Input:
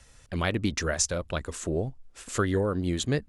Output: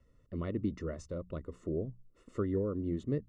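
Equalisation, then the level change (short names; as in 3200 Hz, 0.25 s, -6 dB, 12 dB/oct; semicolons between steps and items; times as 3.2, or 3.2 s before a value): running mean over 55 samples; low shelf 170 Hz -10 dB; notches 60/120/180 Hz; 0.0 dB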